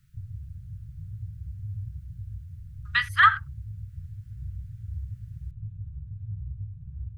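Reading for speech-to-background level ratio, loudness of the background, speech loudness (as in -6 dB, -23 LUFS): 18.5 dB, -39.5 LUFS, -21.0 LUFS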